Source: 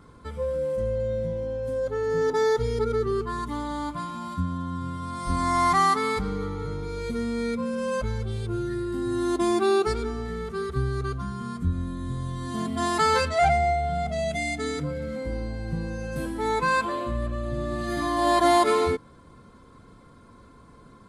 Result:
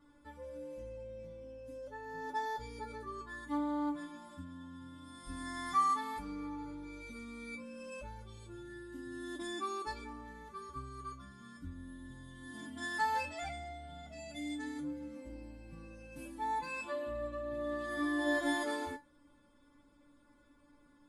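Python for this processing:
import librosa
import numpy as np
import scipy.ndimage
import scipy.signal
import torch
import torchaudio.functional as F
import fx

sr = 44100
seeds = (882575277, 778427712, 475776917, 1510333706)

y = fx.comb_fb(x, sr, f0_hz=290.0, decay_s=0.19, harmonics='all', damping=0.0, mix_pct=100)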